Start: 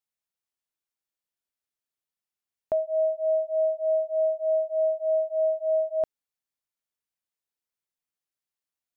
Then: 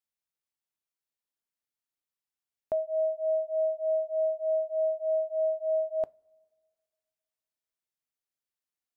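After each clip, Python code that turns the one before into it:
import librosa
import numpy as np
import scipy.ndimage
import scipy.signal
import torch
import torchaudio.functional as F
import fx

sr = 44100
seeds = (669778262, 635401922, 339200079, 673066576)

y = fx.rev_double_slope(x, sr, seeds[0], early_s=0.21, late_s=1.9, knee_db=-22, drr_db=19.0)
y = y * librosa.db_to_amplitude(-3.5)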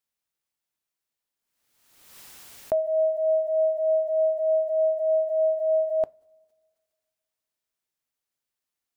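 y = fx.pre_swell(x, sr, db_per_s=49.0)
y = y * librosa.db_to_amplitude(5.0)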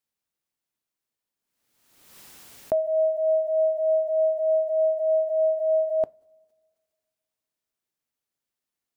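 y = fx.peak_eq(x, sr, hz=230.0, db=5.0, octaves=2.5)
y = y * librosa.db_to_amplitude(-1.5)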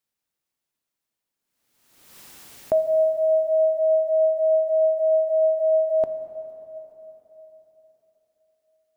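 y = fx.rev_plate(x, sr, seeds[1], rt60_s=4.0, hf_ratio=0.8, predelay_ms=0, drr_db=9.0)
y = y * librosa.db_to_amplitude(2.0)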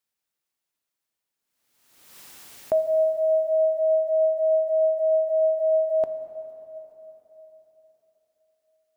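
y = fx.low_shelf(x, sr, hz=430.0, db=-5.0)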